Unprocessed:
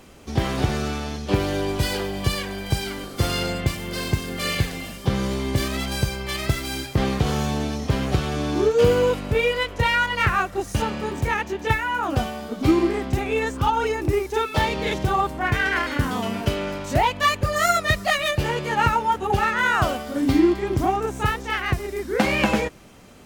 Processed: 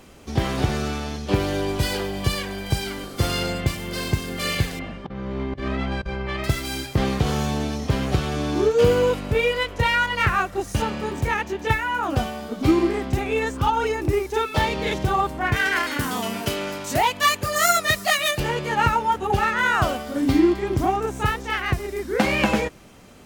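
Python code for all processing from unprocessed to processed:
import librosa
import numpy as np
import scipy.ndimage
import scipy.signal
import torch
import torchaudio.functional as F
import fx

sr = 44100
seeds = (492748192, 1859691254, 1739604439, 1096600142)

y = fx.chain(x, sr, fx.lowpass(hz=2000.0, slope=12),
    fx.over_compress(threshold_db=-27.0, ratio=-0.5), at=(4.79, 6.44))
y = fx.chain(y, sr, fx.highpass(hz=190.0, slope=6),
    fx.high_shelf(hz=5500.0, db=10.0),
    fx.notch(hz=550.0, q=12.0), at=(15.56, 18.4))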